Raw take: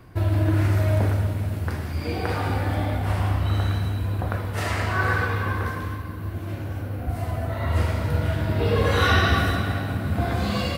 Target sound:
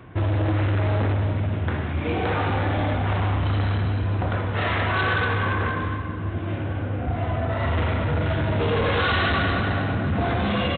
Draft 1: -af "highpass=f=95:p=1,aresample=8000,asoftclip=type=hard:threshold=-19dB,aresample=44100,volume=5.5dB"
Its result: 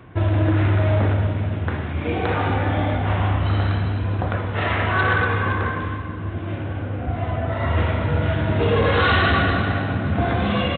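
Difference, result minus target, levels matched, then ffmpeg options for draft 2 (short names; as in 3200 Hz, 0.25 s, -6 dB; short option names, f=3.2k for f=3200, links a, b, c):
hard clip: distortion -7 dB
-af "highpass=f=95:p=1,aresample=8000,asoftclip=type=hard:threshold=-25dB,aresample=44100,volume=5.5dB"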